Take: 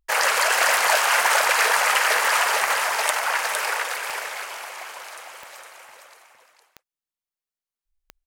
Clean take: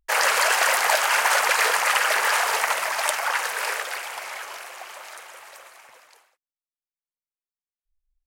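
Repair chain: de-click; inverse comb 0.459 s -4.5 dB

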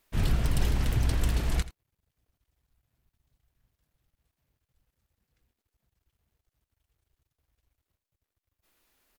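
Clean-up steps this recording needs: inverse comb 83 ms -16.5 dB

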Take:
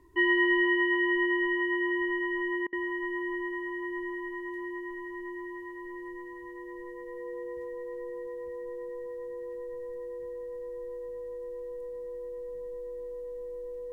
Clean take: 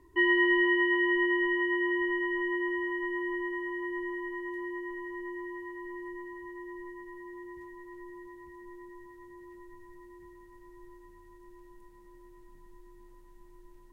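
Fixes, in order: notch 490 Hz, Q 30; interpolate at 2.67, 56 ms

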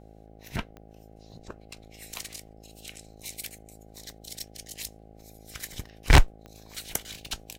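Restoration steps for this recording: de-click; de-hum 53.8 Hz, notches 15

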